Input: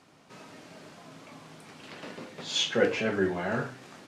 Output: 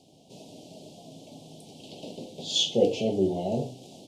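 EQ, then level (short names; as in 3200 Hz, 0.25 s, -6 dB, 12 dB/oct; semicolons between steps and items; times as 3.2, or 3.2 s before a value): elliptic band-stop 730–3100 Hz, stop band 80 dB; +3.5 dB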